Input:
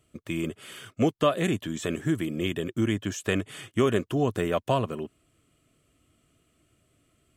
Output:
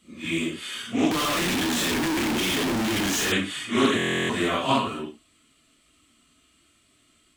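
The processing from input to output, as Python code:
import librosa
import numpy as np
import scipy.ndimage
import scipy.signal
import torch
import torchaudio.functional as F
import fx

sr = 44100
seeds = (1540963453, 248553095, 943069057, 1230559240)

y = fx.phase_scramble(x, sr, seeds[0], window_ms=200)
y = fx.graphic_eq_10(y, sr, hz=(125, 250, 500, 1000, 2000, 4000, 8000), db=(-9, 8, -5, 6, 5, 12, 7))
y = fx.schmitt(y, sr, flips_db=-38.5, at=(1.11, 3.32))
y = fx.buffer_glitch(y, sr, at_s=(3.97,), block=1024, repeats=13)
y = fx.doppler_dist(y, sr, depth_ms=0.16)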